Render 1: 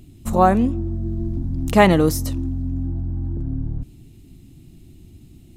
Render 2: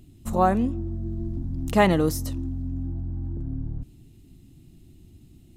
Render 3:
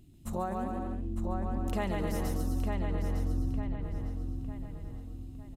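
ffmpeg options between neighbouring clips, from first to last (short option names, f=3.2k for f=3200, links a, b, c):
-af "bandreject=f=2.3k:w=22,volume=-5.5dB"
-filter_complex "[0:a]asplit=2[a][b];[b]aecho=0:1:140|252|341.6|413.3|470.6:0.631|0.398|0.251|0.158|0.1[c];[a][c]amix=inputs=2:normalize=0,acompressor=threshold=-24dB:ratio=6,asplit=2[d][e];[e]adelay=905,lowpass=f=4.1k:p=1,volume=-4dB,asplit=2[f][g];[g]adelay=905,lowpass=f=4.1k:p=1,volume=0.44,asplit=2[h][i];[i]adelay=905,lowpass=f=4.1k:p=1,volume=0.44,asplit=2[j][k];[k]adelay=905,lowpass=f=4.1k:p=1,volume=0.44,asplit=2[l][m];[m]adelay=905,lowpass=f=4.1k:p=1,volume=0.44,asplit=2[n][o];[o]adelay=905,lowpass=f=4.1k:p=1,volume=0.44[p];[f][h][j][l][n][p]amix=inputs=6:normalize=0[q];[d][q]amix=inputs=2:normalize=0,volume=-6.5dB"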